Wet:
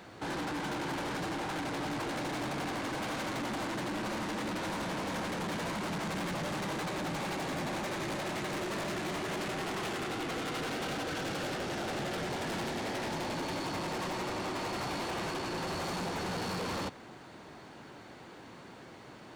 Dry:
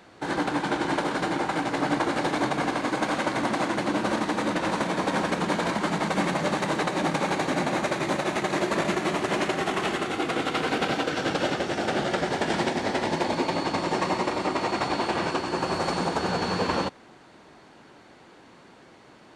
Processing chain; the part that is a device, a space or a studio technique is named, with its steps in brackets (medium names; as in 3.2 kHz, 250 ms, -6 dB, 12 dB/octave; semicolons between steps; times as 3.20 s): open-reel tape (saturation -35.5 dBFS, distortion -5 dB; peaking EQ 110 Hz +4.5 dB 1.1 oct; white noise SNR 43 dB); trim +1 dB